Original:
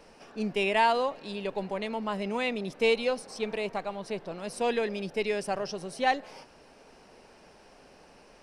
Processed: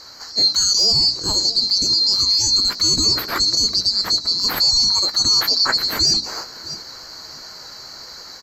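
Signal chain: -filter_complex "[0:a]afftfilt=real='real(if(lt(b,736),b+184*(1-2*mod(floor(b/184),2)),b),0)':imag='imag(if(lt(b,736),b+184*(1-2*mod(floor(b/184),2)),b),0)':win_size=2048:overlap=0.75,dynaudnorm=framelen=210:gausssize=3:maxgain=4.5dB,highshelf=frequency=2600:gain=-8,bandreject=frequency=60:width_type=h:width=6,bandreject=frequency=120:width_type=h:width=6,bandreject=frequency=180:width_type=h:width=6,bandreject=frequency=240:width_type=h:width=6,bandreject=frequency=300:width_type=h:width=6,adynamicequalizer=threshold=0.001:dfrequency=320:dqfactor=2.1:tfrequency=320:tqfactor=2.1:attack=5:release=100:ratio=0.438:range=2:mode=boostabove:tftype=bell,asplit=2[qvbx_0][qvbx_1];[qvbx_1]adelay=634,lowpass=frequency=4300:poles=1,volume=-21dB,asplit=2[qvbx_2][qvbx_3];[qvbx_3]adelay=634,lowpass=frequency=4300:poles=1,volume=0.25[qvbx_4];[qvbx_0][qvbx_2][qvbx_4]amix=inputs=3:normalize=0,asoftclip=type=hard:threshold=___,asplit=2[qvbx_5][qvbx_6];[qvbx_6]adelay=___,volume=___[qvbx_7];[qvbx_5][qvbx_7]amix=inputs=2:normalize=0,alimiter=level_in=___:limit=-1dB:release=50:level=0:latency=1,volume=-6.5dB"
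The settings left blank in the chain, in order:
-15.5dB, 16, -12dB, 25.5dB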